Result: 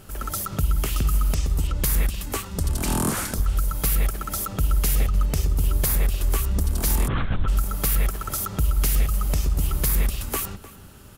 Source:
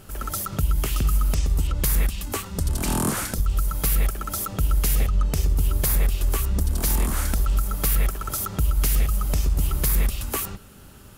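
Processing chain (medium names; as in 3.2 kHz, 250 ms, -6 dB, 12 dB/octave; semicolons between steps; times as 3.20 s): echo from a far wall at 52 m, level -16 dB; 7.08–7.48 s: LPC vocoder at 8 kHz whisper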